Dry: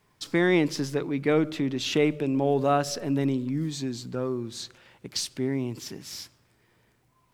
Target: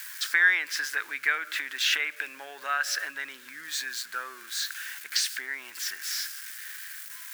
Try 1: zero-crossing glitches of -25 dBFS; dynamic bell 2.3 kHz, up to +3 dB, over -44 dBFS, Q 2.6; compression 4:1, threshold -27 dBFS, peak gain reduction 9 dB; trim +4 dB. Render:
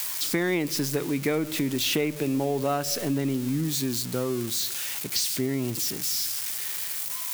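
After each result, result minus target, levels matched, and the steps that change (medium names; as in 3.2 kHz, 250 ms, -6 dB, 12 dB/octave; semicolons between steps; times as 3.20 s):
2 kHz band -12.0 dB; zero-crossing glitches: distortion +11 dB
add after compression: resonant high-pass 1.6 kHz, resonance Q 7.2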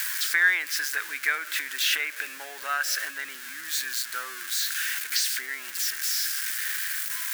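zero-crossing glitches: distortion +11 dB
change: zero-crossing glitches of -36.5 dBFS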